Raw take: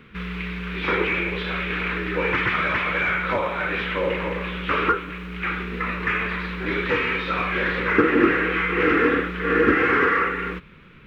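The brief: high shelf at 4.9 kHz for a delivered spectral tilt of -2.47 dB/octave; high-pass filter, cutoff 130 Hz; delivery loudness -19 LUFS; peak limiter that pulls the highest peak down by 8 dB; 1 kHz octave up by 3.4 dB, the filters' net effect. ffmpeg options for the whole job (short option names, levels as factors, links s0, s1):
-af "highpass=130,equalizer=f=1000:t=o:g=4.5,highshelf=f=4900:g=3.5,volume=1.41,alimiter=limit=0.376:level=0:latency=1"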